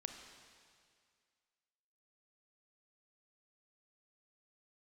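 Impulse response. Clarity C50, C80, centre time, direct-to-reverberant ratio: 6.0 dB, 7.0 dB, 43 ms, 5.0 dB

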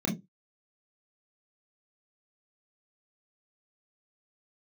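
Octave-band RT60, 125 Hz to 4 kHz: 0.25, 0.25, 0.20, 0.15, 0.15, 0.15 s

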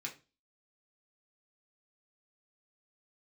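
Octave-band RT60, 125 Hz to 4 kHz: 0.40, 0.35, 0.30, 0.30, 0.25, 0.30 s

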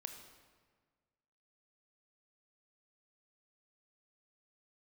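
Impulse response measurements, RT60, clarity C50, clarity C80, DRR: 1.6 s, 7.0 dB, 8.5 dB, 5.0 dB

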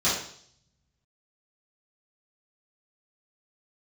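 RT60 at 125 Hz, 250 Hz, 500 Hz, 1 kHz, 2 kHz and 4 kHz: 1.6, 0.65, 0.60, 0.55, 0.55, 0.70 s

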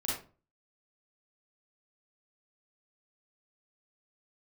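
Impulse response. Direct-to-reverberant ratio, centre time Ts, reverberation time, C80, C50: -7.0 dB, 51 ms, 0.35 s, 7.5 dB, 0.5 dB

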